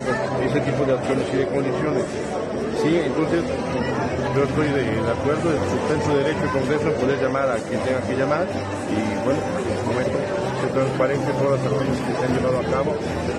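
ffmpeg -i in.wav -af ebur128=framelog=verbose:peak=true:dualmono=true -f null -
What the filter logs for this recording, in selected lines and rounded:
Integrated loudness:
  I:         -19.1 LUFS
  Threshold: -29.0 LUFS
Loudness range:
  LRA:         1.5 LU
  Threshold: -39.1 LUFS
  LRA low:   -19.7 LUFS
  LRA high:  -18.3 LUFS
True peak:
  Peak:       -8.5 dBFS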